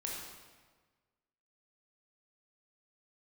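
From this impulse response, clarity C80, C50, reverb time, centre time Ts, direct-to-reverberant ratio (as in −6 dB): 2.5 dB, 0.0 dB, 1.4 s, 78 ms, −3.0 dB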